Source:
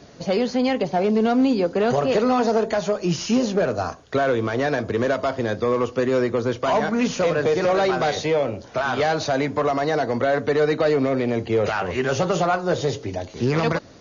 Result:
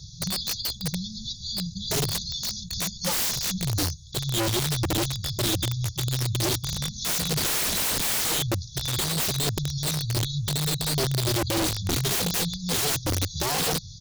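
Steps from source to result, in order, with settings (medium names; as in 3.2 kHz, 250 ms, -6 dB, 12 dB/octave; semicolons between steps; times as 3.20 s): 7.37–8.41 s: spectral peaks clipped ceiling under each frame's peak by 18 dB; brick-wall FIR band-stop 200–3300 Hz; comb 2.3 ms, depth 83%; integer overflow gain 28 dB; attacks held to a fixed rise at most 390 dB/s; trim +7.5 dB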